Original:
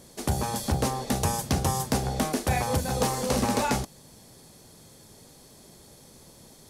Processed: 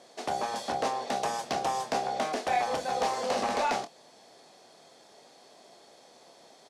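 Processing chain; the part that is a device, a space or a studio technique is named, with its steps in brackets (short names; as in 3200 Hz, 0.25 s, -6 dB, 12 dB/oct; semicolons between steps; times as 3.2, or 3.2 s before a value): intercom (BPF 440–4800 Hz; bell 700 Hz +9 dB 0.27 oct; soft clip -20.5 dBFS, distortion -17 dB; doubler 25 ms -9.5 dB)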